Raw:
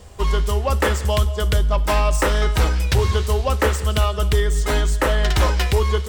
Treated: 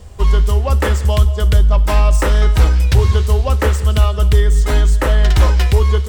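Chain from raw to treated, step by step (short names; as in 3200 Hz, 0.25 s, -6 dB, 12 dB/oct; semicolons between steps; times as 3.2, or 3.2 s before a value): low shelf 170 Hz +8.5 dB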